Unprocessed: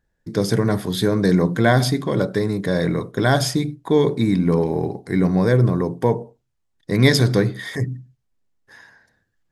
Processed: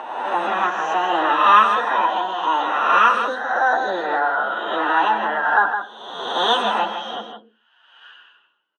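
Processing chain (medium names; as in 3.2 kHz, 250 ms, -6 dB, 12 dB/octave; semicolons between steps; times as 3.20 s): reverse spectral sustain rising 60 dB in 1.45 s; peaking EQ 890 Hz +7.5 dB 1.1 oct; plain phase-vocoder stretch 1.6×; cabinet simulation 300–2300 Hz, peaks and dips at 570 Hz +7 dB, 840 Hz +10 dB, 1.3 kHz -8 dB, 2.1 kHz +3 dB; on a send: delay 279 ms -8 dB; on the sum: speed mistake 45 rpm record played at 78 rpm; trim -3.5 dB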